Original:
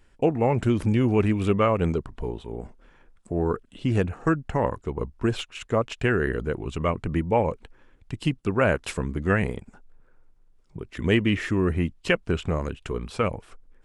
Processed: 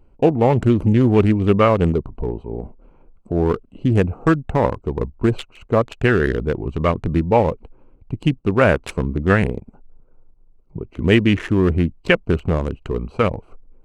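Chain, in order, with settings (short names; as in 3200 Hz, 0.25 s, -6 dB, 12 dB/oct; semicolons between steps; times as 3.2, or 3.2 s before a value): Wiener smoothing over 25 samples; 9.53–10.81 transient shaper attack +1 dB, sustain -4 dB; gain +7 dB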